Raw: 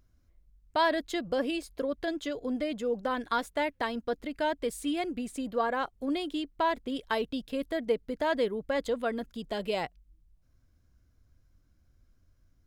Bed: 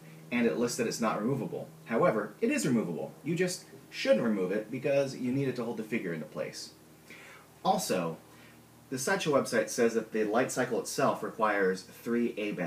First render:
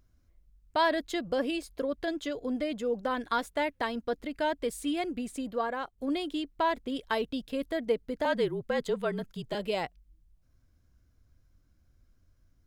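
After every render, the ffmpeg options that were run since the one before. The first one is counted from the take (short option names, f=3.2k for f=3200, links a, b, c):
-filter_complex "[0:a]asettb=1/sr,asplit=3[a][b][c];[a]atrim=end=8.254[d];[b]atrim=start=8.25:end=9.55,asetpts=PTS-STARTPTS,afade=t=in:d=0.004:c=qsin,afade=t=out:st=1.296:d=0.004:c=qsin,afreqshift=-42[e];[c]atrim=start=9.546[f];[d][e]acrossfade=d=0.004:c1=hsin:c2=qsin[g];[g][f]acrossfade=d=0.004:c1=qsin:c2=hsin,asplit=2[h][i];[h]atrim=end=5.98,asetpts=PTS-STARTPTS,afade=t=out:st=5.33:d=0.65:silence=0.473151[j];[i]atrim=start=5.98,asetpts=PTS-STARTPTS,afade=t=in:d=0.004:c=hsin:silence=0.473151[k];[j][k]concat=n=2:v=0:a=1"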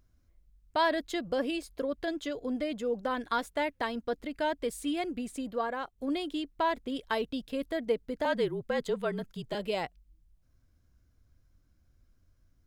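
-af "volume=-1dB"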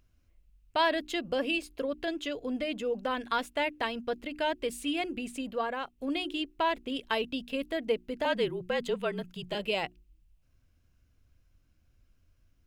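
-af "equalizer=f=2.7k:w=3.1:g=10,bandreject=f=60:t=h:w=6,bandreject=f=120:t=h:w=6,bandreject=f=180:t=h:w=6,bandreject=f=240:t=h:w=6,bandreject=f=300:t=h:w=6,bandreject=f=360:t=h:w=6"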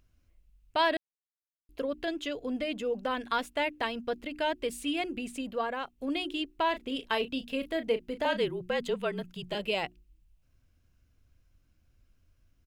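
-filter_complex "[0:a]asplit=3[a][b][c];[a]afade=t=out:st=6.72:d=0.02[d];[b]asplit=2[e][f];[f]adelay=34,volume=-10.5dB[g];[e][g]amix=inputs=2:normalize=0,afade=t=in:st=6.72:d=0.02,afade=t=out:st=8.42:d=0.02[h];[c]afade=t=in:st=8.42:d=0.02[i];[d][h][i]amix=inputs=3:normalize=0,asplit=3[j][k][l];[j]atrim=end=0.97,asetpts=PTS-STARTPTS,afade=t=out:st=0.966:d=0.004:c=hsin[m];[k]atrim=start=0.97:end=1.69,asetpts=PTS-STARTPTS,volume=0[n];[l]atrim=start=1.69,asetpts=PTS-STARTPTS,afade=t=in:d=0.004:c=hsin[o];[m][n][o]concat=n=3:v=0:a=1"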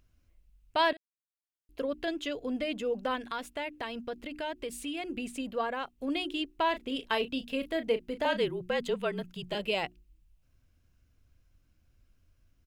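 -filter_complex "[0:a]asettb=1/sr,asplit=3[a][b][c];[a]atrim=end=3.164[d];[b]atrim=start=3.16:end=5.1,asetpts=PTS-STARTPTS,afade=t=in:d=0.004:c=qsin,afade=t=out:st=1.936:d=0.004:c=qsin,acompressor=threshold=-36dB:ratio=2:attack=3.2:release=140:knee=1:detection=peak[e];[c]atrim=start=5.096[f];[d][e]acrossfade=d=0.004:c1=hsin:c2=qsin[g];[g][f]acrossfade=d=0.004:c1=qsin:c2=hsin,asplit=2[h][i];[h]atrim=end=0.93,asetpts=PTS-STARTPTS,afade=t=out:st=0.926:d=0.004:c=hsin:silence=0.133352[j];[i]atrim=start=0.93,asetpts=PTS-STARTPTS,afade=t=in:d=0.9:c=qua:silence=0.133352[k];[j][k]concat=n=2:v=0:a=1"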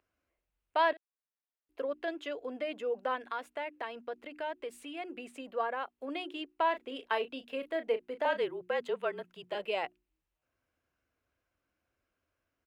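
-filter_complex "[0:a]highpass=53,acrossover=split=350 2300:gain=0.1 1 0.251[a][b][c];[a][b][c]amix=inputs=3:normalize=0"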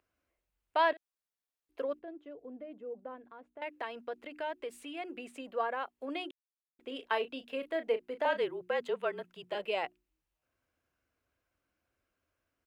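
-filter_complex "[0:a]asettb=1/sr,asplit=3[a][b][c];[a]atrim=end=1.994[d];[b]atrim=start=1.99:end=3.62,asetpts=PTS-STARTPTS,afade=t=in:d=0.004:c=qsin,afade=t=out:st=1.626:d=0.004:c=qsin,bandpass=f=100:t=q:w=0.54[e];[c]atrim=start=3.616[f];[d][e]acrossfade=d=0.004:c1=hsin:c2=qsin[g];[g][f]acrossfade=d=0.004:c1=qsin:c2=hsin,asplit=3[h][i][j];[h]atrim=end=6.31,asetpts=PTS-STARTPTS,afade=t=out:st=6.306:d=0.004:c=hsin[k];[i]atrim=start=6.31:end=6.79,asetpts=PTS-STARTPTS,volume=0[l];[j]atrim=start=6.79,asetpts=PTS-STARTPTS,afade=t=in:d=0.004:c=hsin[m];[k][l][m]concat=n=3:v=0:a=1"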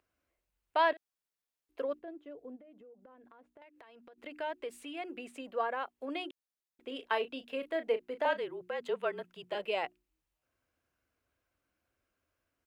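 -filter_complex "[0:a]asplit=3[a][b][c];[a]afade=t=out:st=2.55:d=0.02[d];[b]acompressor=threshold=-53dB:ratio=10:attack=3.2:release=140:knee=1:detection=peak,afade=t=in:st=2.55:d=0.02,afade=t=out:st=4.17:d=0.02[e];[c]afade=t=in:st=4.17:d=0.02[f];[d][e][f]amix=inputs=3:normalize=0,asettb=1/sr,asplit=3[g][h][i];[g]atrim=end=8.334[j];[h]atrim=start=8.33:end=8.85,asetpts=PTS-STARTPTS,afade=t=in:d=0.004:c=qsin,afade=t=out:st=0.516:d=0.004:c=qsin,acompressor=threshold=-42dB:ratio=1.5:attack=3.2:release=140:knee=1:detection=peak[k];[i]atrim=start=8.846[l];[j][k]acrossfade=d=0.004:c1=hsin:c2=qsin[m];[m][l]acrossfade=d=0.004:c1=qsin:c2=hsin"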